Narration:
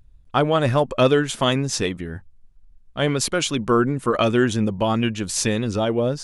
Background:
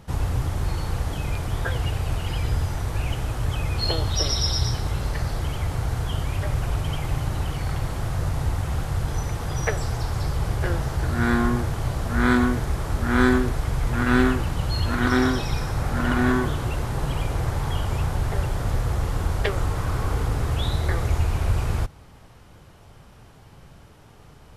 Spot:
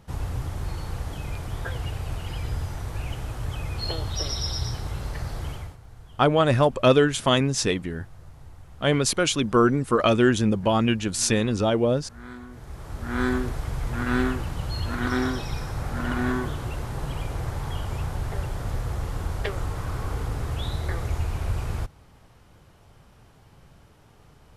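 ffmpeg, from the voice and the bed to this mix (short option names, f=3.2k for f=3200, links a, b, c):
-filter_complex "[0:a]adelay=5850,volume=-0.5dB[a];[1:a]volume=11.5dB,afade=t=out:st=5.5:d=0.27:silence=0.149624,afade=t=in:st=12.48:d=0.95:silence=0.141254[b];[a][b]amix=inputs=2:normalize=0"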